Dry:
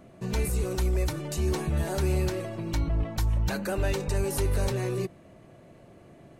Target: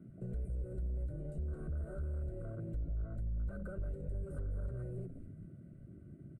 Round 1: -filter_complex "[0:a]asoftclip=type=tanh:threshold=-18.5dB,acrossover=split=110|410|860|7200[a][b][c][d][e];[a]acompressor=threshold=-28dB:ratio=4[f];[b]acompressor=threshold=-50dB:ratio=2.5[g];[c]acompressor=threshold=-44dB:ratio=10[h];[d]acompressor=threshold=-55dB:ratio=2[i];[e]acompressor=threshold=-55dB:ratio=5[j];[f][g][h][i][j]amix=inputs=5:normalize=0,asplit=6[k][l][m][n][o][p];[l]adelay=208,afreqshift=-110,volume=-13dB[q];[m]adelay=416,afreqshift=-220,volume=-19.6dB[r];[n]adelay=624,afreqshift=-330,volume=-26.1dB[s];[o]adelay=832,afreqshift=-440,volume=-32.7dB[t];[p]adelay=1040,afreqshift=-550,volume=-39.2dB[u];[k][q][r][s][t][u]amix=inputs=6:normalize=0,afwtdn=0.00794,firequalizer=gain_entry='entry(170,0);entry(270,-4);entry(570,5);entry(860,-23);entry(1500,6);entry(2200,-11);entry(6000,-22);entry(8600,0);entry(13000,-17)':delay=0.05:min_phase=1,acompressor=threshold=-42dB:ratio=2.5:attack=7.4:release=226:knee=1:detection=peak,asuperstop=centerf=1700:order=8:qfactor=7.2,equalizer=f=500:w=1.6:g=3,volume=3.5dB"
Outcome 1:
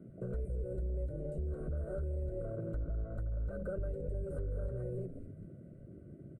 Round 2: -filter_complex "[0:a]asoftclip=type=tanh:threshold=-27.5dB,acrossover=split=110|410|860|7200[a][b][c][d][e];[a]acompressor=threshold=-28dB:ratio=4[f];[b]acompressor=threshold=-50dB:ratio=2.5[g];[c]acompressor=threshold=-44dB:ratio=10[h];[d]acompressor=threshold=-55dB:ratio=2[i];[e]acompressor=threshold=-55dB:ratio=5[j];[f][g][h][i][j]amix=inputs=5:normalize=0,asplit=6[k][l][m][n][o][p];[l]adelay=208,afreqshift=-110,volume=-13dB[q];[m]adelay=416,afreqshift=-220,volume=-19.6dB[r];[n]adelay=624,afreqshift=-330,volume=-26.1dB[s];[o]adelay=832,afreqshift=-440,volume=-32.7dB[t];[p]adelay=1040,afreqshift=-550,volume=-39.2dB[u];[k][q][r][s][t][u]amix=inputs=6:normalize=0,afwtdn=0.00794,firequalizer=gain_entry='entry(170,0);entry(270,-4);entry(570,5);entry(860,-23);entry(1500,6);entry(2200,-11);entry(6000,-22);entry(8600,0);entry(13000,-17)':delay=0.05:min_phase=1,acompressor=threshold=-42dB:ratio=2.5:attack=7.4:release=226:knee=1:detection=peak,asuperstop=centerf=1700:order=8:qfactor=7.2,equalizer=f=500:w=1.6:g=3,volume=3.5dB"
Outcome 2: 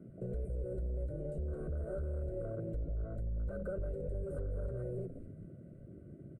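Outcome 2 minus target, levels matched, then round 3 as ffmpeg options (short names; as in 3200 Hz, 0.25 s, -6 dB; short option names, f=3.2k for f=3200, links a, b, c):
500 Hz band +6.5 dB
-filter_complex "[0:a]asoftclip=type=tanh:threshold=-27.5dB,acrossover=split=110|410|860|7200[a][b][c][d][e];[a]acompressor=threshold=-28dB:ratio=4[f];[b]acompressor=threshold=-50dB:ratio=2.5[g];[c]acompressor=threshold=-44dB:ratio=10[h];[d]acompressor=threshold=-55dB:ratio=2[i];[e]acompressor=threshold=-55dB:ratio=5[j];[f][g][h][i][j]amix=inputs=5:normalize=0,asplit=6[k][l][m][n][o][p];[l]adelay=208,afreqshift=-110,volume=-13dB[q];[m]adelay=416,afreqshift=-220,volume=-19.6dB[r];[n]adelay=624,afreqshift=-330,volume=-26.1dB[s];[o]adelay=832,afreqshift=-440,volume=-32.7dB[t];[p]adelay=1040,afreqshift=-550,volume=-39.2dB[u];[k][q][r][s][t][u]amix=inputs=6:normalize=0,afwtdn=0.00794,firequalizer=gain_entry='entry(170,0);entry(270,-4);entry(570,5);entry(860,-23);entry(1500,6);entry(2200,-11);entry(6000,-22);entry(8600,0);entry(13000,-17)':delay=0.05:min_phase=1,acompressor=threshold=-42dB:ratio=2.5:attack=7.4:release=226:knee=1:detection=peak,asuperstop=centerf=1700:order=8:qfactor=7.2,equalizer=f=500:w=1.6:g=-8,volume=3.5dB"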